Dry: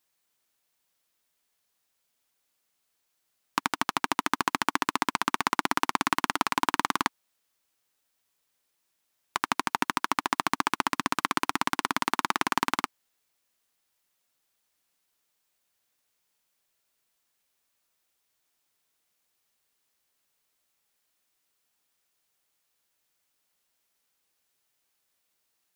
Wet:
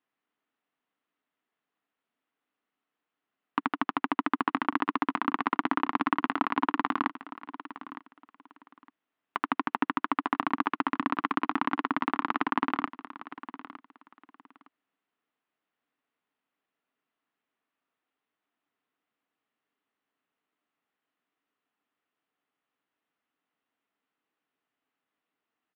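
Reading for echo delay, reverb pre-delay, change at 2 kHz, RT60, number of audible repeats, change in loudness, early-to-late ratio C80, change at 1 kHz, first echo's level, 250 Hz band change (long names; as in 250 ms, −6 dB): 911 ms, no reverb audible, −3.5 dB, no reverb audible, 2, −1.5 dB, no reverb audible, −1.0 dB, −15.0 dB, +4.0 dB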